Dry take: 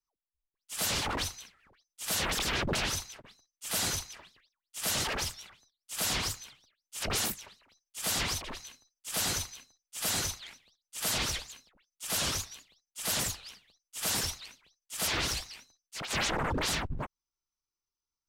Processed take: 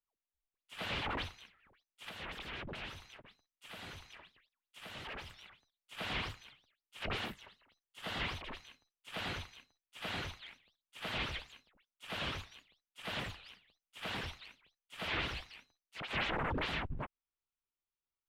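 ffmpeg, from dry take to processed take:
-filter_complex "[0:a]asettb=1/sr,asplit=3[s0][s1][s2];[s0]atrim=end=2.094[s3];[s1]atrim=start=2.09:end=5.3,asetpts=PTS-STARTPTS,afade=t=in:d=0.004:c=qsin,afade=t=out:st=3.206:d=0.004:c=qsin,acompressor=threshold=0.0112:ratio=3:attack=3.2:release=140:knee=1:detection=peak[s4];[s2]atrim=start=5.296[s5];[s3][s4]acrossfade=d=0.004:c1=hsin:c2=qsin[s6];[s6][s5]acrossfade=d=0.004:c1=qsin:c2=hsin,asettb=1/sr,asplit=3[s7][s8][s9];[s7]atrim=end=7.294[s10];[s8]atrim=start=7.29:end=8.23,asetpts=PTS-STARTPTS,afade=t=in:d=0.004:c=qsin,afade=t=out:st=0.936:d=0.004:c=qsin,bandreject=f=2400:w=12[s11];[s9]atrim=start=8.226[s12];[s10][s11]acrossfade=d=0.004:c1=hsin:c2=qsin[s13];[s13][s12]acrossfade=d=0.004:c1=qsin:c2=hsin,acrossover=split=4700[s14][s15];[s15]acompressor=threshold=0.00562:ratio=4:attack=1:release=60[s16];[s14][s16]amix=inputs=2:normalize=0,highshelf=f=4200:t=q:w=1.5:g=-11.5,volume=0.562"

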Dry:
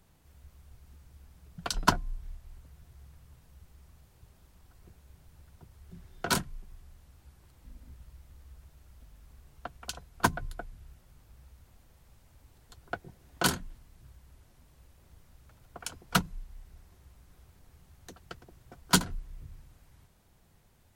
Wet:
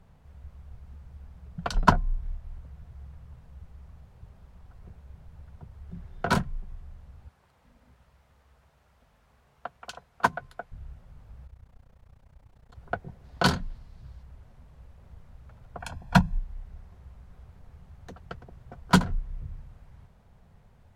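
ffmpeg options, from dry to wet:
-filter_complex "[0:a]asettb=1/sr,asplit=3[s0][s1][s2];[s0]atrim=end=7.284[s3];[s1]atrim=start=7.28:end=10.72,asetpts=PTS-STARTPTS,afade=t=in:d=0.004:c=qsin,afade=t=out:st=3.436:d=0.004:c=qsin,highpass=f=590:p=1[s4];[s2]atrim=start=10.716[s5];[s3][s4]acrossfade=d=0.004:c1=hsin:c2=qsin[s6];[s6][s5]acrossfade=d=0.004:c1=qsin:c2=hsin,asplit=3[s7][s8][s9];[s7]afade=t=out:st=11.45:d=0.02[s10];[s8]tremolo=f=30:d=0.919,afade=t=in:st=11.45:d=0.02,afade=t=out:st=12.74:d=0.02[s11];[s9]afade=t=in:st=12.74:d=0.02[s12];[s10][s11][s12]amix=inputs=3:normalize=0,asettb=1/sr,asplit=3[s13][s14][s15];[s13]atrim=end=13.244[s16];[s14]atrim=start=13.24:end=14.23,asetpts=PTS-STARTPTS,afade=t=in:d=0.004:c=qsin,afade=t=out:st=0.986:d=0.004:c=qsin,equalizer=f=4500:t=o:w=0.79:g=8.5[s17];[s15]atrim=start=14.226[s18];[s16][s17]acrossfade=d=0.004:c1=hsin:c2=qsin[s19];[s19][s18]acrossfade=d=0.004:c1=qsin:c2=hsin,asettb=1/sr,asplit=3[s20][s21][s22];[s20]atrim=end=15.784[s23];[s21]atrim=start=15.78:end=16.39,asetpts=PTS-STARTPTS,afade=t=in:d=0.004:c=qsin,afade=t=out:st=0.606:d=0.004:c=qsin,aecho=1:1:1.2:0.69,atrim=end_sample=26901[s24];[s22]atrim=start=16.386[s25];[s23][s24]acrossfade=d=0.004:c1=hsin:c2=qsin[s26];[s26][s25]acrossfade=d=0.004:c1=qsin:c2=hsin,lowpass=f=1000:p=1,equalizer=f=320:w=3.2:g=-11,volume=2.66"

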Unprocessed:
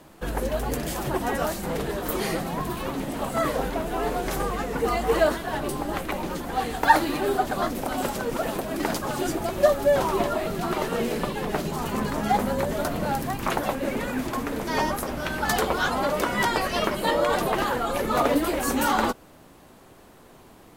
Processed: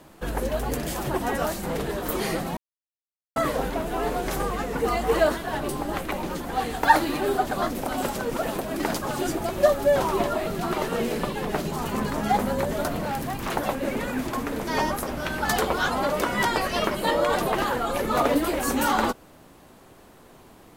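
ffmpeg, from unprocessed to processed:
-filter_complex "[0:a]asettb=1/sr,asplit=3[s0][s1][s2];[s0]atrim=end=13.014[s3];[s1]atrim=start=13.01:end=13.56,asetpts=PTS-STARTPTS,afade=t=in:d=0.004:c=qsin,afade=t=out:st=0.546:d=0.004:c=qsin,asoftclip=type=hard:threshold=0.0562[s4];[s2]atrim=start=13.556[s5];[s3][s4]acrossfade=d=0.004:c1=hsin:c2=qsin[s6];[s6][s5]acrossfade=d=0.004:c1=qsin:c2=hsin,asplit=3[s7][s8][s9];[s7]atrim=end=2.57,asetpts=PTS-STARTPTS,afade=t=out:st=2.566:d=0.004:c=hsin[s10];[s8]atrim=start=2.57:end=3.36,asetpts=PTS-STARTPTS,volume=0[s11];[s9]atrim=start=3.36,asetpts=PTS-STARTPTS,afade=t=in:d=0.004:c=hsin[s12];[s10][s11][s12]concat=n=3:v=0:a=1"

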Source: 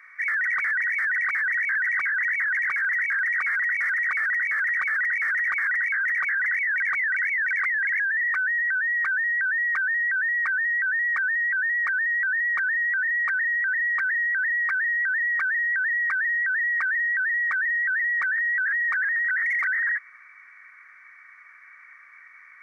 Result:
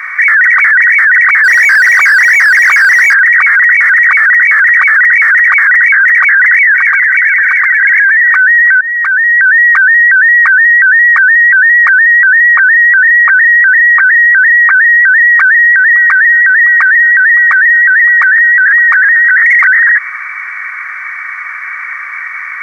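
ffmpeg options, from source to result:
-filter_complex "[0:a]asettb=1/sr,asplit=3[s0][s1][s2];[s0]atrim=end=1.444[s3];[s1]atrim=start=1.44:end=3.14,asetpts=PTS-STARTPTS,afade=t=in:d=0.004:c=qsin,afade=t=out:st=1.696:d=0.004:c=qsin,asplit=2[s4][s5];[s5]highpass=f=720:p=1,volume=39.8,asoftclip=type=tanh:threshold=0.126[s6];[s4][s6]amix=inputs=2:normalize=0,lowpass=f=1300:p=1,volume=0.501[s7];[s2]atrim=start=3.136[s8];[s3][s7]acrossfade=d=0.004:c1=hsin:c2=qsin[s9];[s9][s8]acrossfade=d=0.004:c1=qsin:c2=hsin,asplit=2[s10][s11];[s11]afade=t=in:st=6.16:d=0.01,afade=t=out:st=7.23:d=0.01,aecho=0:1:580|1160|1740|2320:0.794328|0.198582|0.0496455|0.0124114[s12];[s10][s12]amix=inputs=2:normalize=0,asplit=3[s13][s14][s15];[s13]afade=t=out:st=12.05:d=0.02[s16];[s14]lowpass=2100,afade=t=in:st=12.05:d=0.02,afade=t=out:st=15.01:d=0.02[s17];[s15]afade=t=in:st=15.01:d=0.02[s18];[s16][s17][s18]amix=inputs=3:normalize=0,asplit=3[s19][s20][s21];[s19]afade=t=out:st=15.75:d=0.02[s22];[s20]aecho=1:1:564:0.126,afade=t=in:st=15.75:d=0.02,afade=t=out:st=19.34:d=0.02[s23];[s21]afade=t=in:st=19.34:d=0.02[s24];[s22][s23][s24]amix=inputs=3:normalize=0,asplit=2[s25][s26];[s25]atrim=end=8.81,asetpts=PTS-STARTPTS,afade=t=out:st=8.806:d=0.004:c=hsin:silence=0.0944061[s27];[s26]atrim=start=8.81,asetpts=PTS-STARTPTS,afade=t=in:d=2.54:silence=0.0944061[s28];[s27][s28]concat=n=2:v=0:a=1,highpass=650,highshelf=f=2100:g=-6.5,alimiter=level_in=42.2:limit=0.891:release=50:level=0:latency=1,volume=0.891"

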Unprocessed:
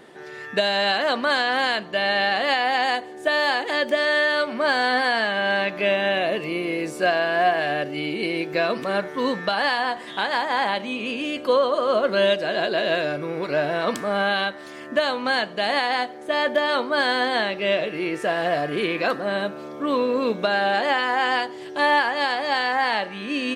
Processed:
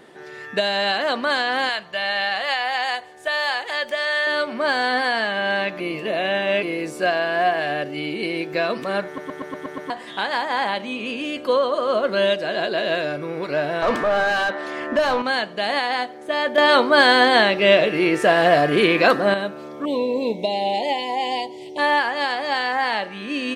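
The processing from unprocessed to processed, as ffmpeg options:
-filter_complex "[0:a]asettb=1/sr,asplit=3[s0][s1][s2];[s0]atrim=end=1.694[s3];[s1]atrim=start=1.69:end=4.27,asetpts=PTS-STARTPTS,afade=t=in:d=0.004:c=qsin,afade=t=out:st=2.576:d=0.004:c=qsin,equalizer=f=290:t=o:w=1.3:g=-15[s4];[s2]atrim=start=4.266[s5];[s3][s4]acrossfade=d=0.004:c1=hsin:c2=qsin[s6];[s6][s5]acrossfade=d=0.004:c1=qsin:c2=hsin,asettb=1/sr,asplit=3[s7][s8][s9];[s7]atrim=end=13.824[s10];[s8]atrim=start=13.82:end=15.22,asetpts=PTS-STARTPTS,afade=t=in:d=0.004:c=qsin,afade=t=out:st=1.396:d=0.004:c=qsin,asplit=2[s11][s12];[s12]highpass=f=720:p=1,volume=12.6,asoftclip=type=tanh:threshold=0.335[s13];[s11][s13]amix=inputs=2:normalize=0,lowpass=f=1100:p=1,volume=0.501[s14];[s9]atrim=start=15.216[s15];[s10][s14]acrossfade=d=0.004:c1=hsin:c2=qsin[s16];[s16][s15]acrossfade=d=0.004:c1=qsin:c2=hsin,asettb=1/sr,asplit=3[s17][s18][s19];[s17]atrim=end=19.854[s20];[s18]atrim=start=19.85:end=21.78,asetpts=PTS-STARTPTS,afade=t=in:d=0.004:c=qsin,afade=t=out:st=1.926:d=0.004:c=qsin,asuperstop=centerf=1400:order=12:qfactor=1.4[s21];[s19]atrim=start=21.776[s22];[s20][s21]acrossfade=d=0.004:c1=hsin:c2=qsin[s23];[s23][s22]acrossfade=d=0.004:c1=qsin:c2=hsin,asplit=12[s24][s25][s26][s27][s28][s29][s30][s31][s32][s33][s34][s35];[s24]atrim=end=5.802[s36];[s25]atrim=start=5.798:end=6.632,asetpts=PTS-STARTPTS,areverse[s37];[s26]atrim=start=6.628:end=9.182[s38];[s27]atrim=start=9.058:end=9.182[s39];[s28]atrim=start=9.058:end=9.182[s40];[s29]atrim=start=9.058:end=9.182[s41];[s30]atrim=start=9.058:end=9.182[s42];[s31]atrim=start=9.058:end=9.182[s43];[s32]atrim=start=9.058:end=9.182[s44];[s33]atrim=start=9.898:end=16.582[s45];[s34]atrim=start=16.578:end=19.342,asetpts=PTS-STARTPTS,volume=2.37[s46];[s35]atrim=start=19.338[s47];[s36][s37]acrossfade=d=0.004:c1=hsin:c2=hsin[s48];[s48][s38]acrossfade=d=0.004:c1=hsin:c2=hsin[s49];[s49][s39]acrossfade=d=0.004:c1=hsin:c2=hsin[s50];[s50][s40]acrossfade=d=0.004:c1=hsin:c2=hsin[s51];[s51][s41]acrossfade=d=0.004:c1=hsin:c2=hsin[s52];[s52][s42]acrossfade=d=0.004:c1=hsin:c2=hsin[s53];[s53][s43]acrossfade=d=0.004:c1=hsin:c2=hsin[s54];[s54][s44]acrossfade=d=0.004:c1=hsin:c2=hsin[s55];[s55][s45]acrossfade=d=0.004:c1=hsin:c2=hsin[s56];[s56][s46]acrossfade=d=0.004:c1=hsin:c2=hsin[s57];[s57][s47]acrossfade=d=0.004:c1=hsin:c2=hsin"

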